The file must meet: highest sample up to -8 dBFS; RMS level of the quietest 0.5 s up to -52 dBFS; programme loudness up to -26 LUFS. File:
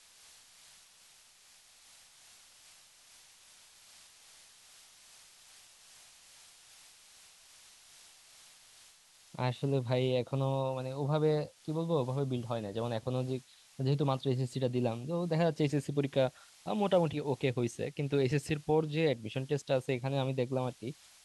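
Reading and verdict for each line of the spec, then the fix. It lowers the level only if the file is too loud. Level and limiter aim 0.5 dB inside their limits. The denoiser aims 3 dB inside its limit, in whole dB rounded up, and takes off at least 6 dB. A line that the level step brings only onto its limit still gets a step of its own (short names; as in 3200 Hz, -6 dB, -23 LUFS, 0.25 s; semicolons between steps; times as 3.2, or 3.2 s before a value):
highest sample -16.0 dBFS: OK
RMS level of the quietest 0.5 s -61 dBFS: OK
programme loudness -33.0 LUFS: OK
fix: none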